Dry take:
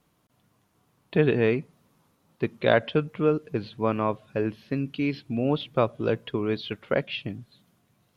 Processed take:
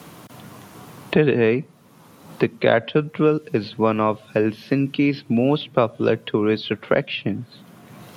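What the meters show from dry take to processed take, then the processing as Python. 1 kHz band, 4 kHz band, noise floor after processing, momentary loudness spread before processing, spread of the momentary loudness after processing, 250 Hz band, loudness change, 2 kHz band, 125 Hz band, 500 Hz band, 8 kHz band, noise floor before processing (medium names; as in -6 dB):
+5.5 dB, +5.5 dB, -50 dBFS, 10 LU, 7 LU, +7.0 dB, +5.5 dB, +5.5 dB, +4.5 dB, +5.5 dB, no reading, -69 dBFS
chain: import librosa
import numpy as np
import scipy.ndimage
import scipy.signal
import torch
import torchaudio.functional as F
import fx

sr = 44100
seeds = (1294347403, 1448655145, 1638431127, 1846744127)

y = scipy.signal.sosfilt(scipy.signal.butter(2, 110.0, 'highpass', fs=sr, output='sos'), x)
y = fx.band_squash(y, sr, depth_pct=70)
y = y * 10.0 ** (6.0 / 20.0)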